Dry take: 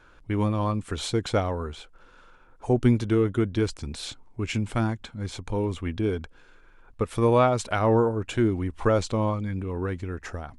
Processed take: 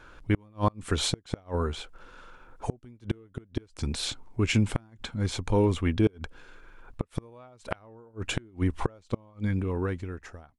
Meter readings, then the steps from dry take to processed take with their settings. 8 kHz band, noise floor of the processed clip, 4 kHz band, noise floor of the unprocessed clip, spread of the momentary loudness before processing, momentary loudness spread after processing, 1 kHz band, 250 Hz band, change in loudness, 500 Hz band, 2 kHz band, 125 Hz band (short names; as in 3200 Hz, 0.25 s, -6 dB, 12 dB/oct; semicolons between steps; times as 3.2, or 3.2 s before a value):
+1.5 dB, -60 dBFS, +2.0 dB, -54 dBFS, 13 LU, 14 LU, -7.5 dB, -4.5 dB, -4.5 dB, -8.0 dB, -2.0 dB, -3.0 dB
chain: ending faded out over 1.22 s; flipped gate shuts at -17 dBFS, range -34 dB; gain +4 dB